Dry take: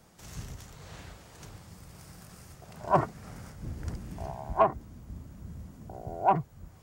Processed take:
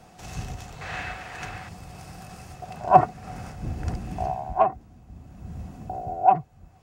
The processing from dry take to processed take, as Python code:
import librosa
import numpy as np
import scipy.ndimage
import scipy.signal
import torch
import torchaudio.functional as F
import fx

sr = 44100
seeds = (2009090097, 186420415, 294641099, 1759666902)

y = fx.peak_eq(x, sr, hz=1800.0, db=14.0, octaves=1.4, at=(0.81, 1.69))
y = fx.rider(y, sr, range_db=5, speed_s=0.5)
y = fx.high_shelf(y, sr, hz=9400.0, db=-10.5)
y = fx.small_body(y, sr, hz=(740.0, 2600.0), ring_ms=70, db=15)
y = y * 10.0 ** (2.0 / 20.0)